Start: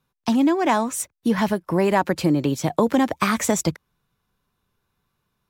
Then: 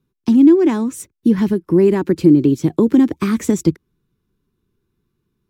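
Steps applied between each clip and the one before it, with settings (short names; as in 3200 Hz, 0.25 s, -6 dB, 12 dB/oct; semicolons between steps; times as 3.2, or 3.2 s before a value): resonant low shelf 480 Hz +9.5 dB, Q 3; gain -5 dB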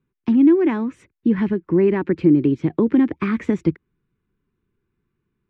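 synth low-pass 2200 Hz, resonance Q 1.8; gain -4 dB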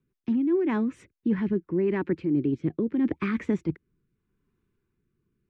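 reverse; compressor, threshold -21 dBFS, peak gain reduction 11 dB; reverse; rotary speaker horn 5 Hz, later 0.8 Hz, at 0.71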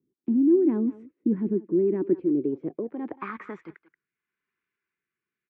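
speakerphone echo 0.18 s, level -16 dB; band-pass sweep 310 Hz -> 2000 Hz, 2.01–4.1; gain +6 dB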